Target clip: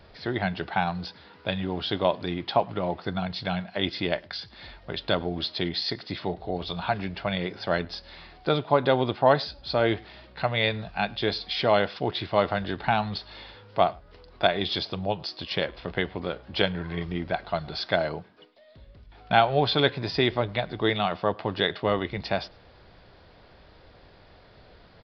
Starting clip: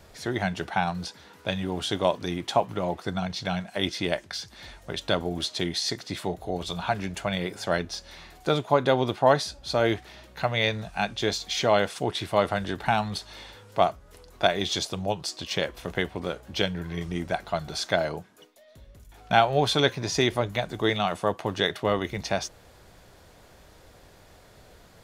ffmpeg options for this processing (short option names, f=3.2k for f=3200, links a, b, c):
-filter_complex "[0:a]asettb=1/sr,asplit=3[a][b][c];[a]atrim=end=16.534[d];[b]atrim=start=16.53:end=17.05,asetpts=PTS-STARTPTS,afade=t=in:d=0.004:c=qsin,afade=t=out:st=0.516:d=0.004:c=qsin,equalizer=f=1k:w=0.58:g=4.5[e];[c]atrim=start=17.046[f];[d][e]acrossfade=d=0.004:c1=hsin:c2=qsin[g];[g][f]acrossfade=d=0.004:c1=qsin:c2=hsin,asplit=2[h][i];[i]adelay=105,volume=-26dB,highshelf=f=4k:g=-2.36[j];[h][j]amix=inputs=2:normalize=0,aresample=11025,aresample=44100"